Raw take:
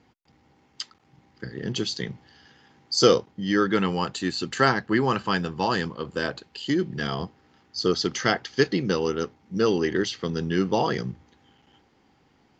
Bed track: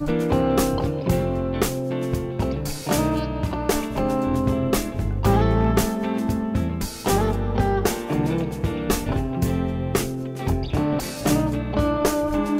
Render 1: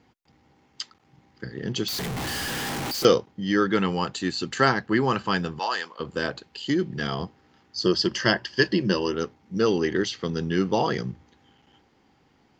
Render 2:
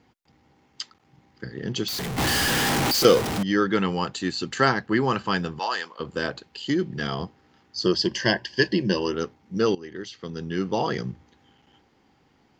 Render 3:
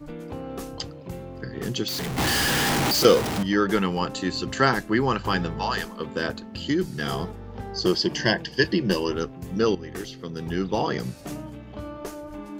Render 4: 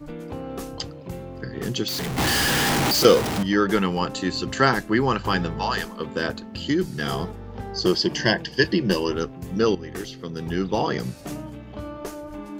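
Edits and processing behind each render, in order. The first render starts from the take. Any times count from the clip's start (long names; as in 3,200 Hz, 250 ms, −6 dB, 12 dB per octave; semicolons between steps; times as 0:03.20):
0:01.88–0:03.05: sign of each sample alone; 0:05.59–0:06.00: high-pass filter 730 Hz; 0:07.83–0:09.14: EQ curve with evenly spaced ripples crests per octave 1.3, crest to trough 10 dB
0:02.18–0:03.43: converter with a step at zero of −21.5 dBFS; 0:07.95–0:08.98: Butterworth band-reject 1,300 Hz, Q 3.5; 0:09.75–0:11.07: fade in, from −19 dB
mix in bed track −15 dB
level +1.5 dB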